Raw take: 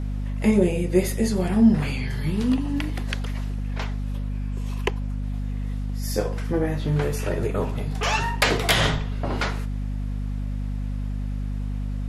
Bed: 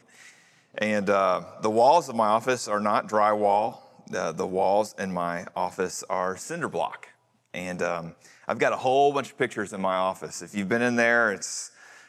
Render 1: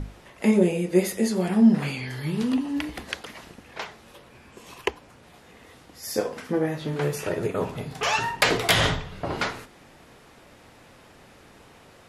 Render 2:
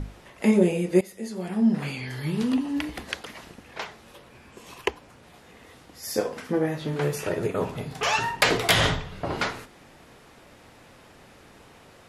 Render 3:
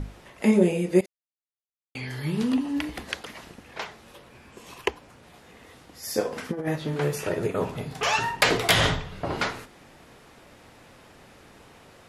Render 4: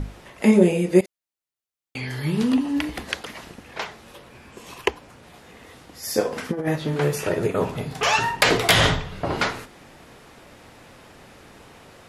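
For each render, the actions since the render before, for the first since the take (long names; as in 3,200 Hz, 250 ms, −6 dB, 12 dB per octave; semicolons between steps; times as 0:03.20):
mains-hum notches 50/100/150/200/250 Hz
0:01.01–0:02.23: fade in, from −18 dB
0:01.06–0:01.95: silence; 0:06.32–0:06.76: compressor whose output falls as the input rises −27 dBFS, ratio −0.5
level +4 dB; brickwall limiter −3 dBFS, peak gain reduction 2.5 dB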